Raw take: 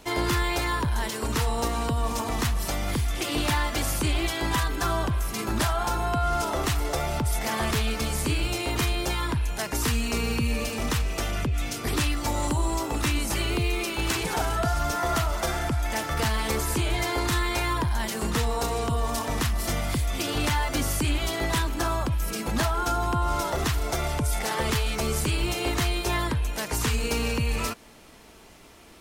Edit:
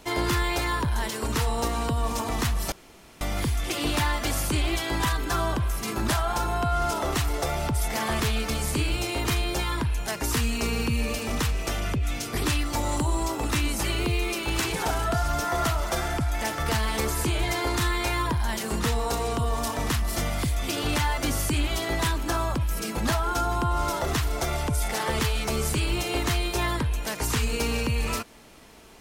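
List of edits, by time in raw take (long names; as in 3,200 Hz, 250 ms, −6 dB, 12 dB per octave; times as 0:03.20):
0:02.72: splice in room tone 0.49 s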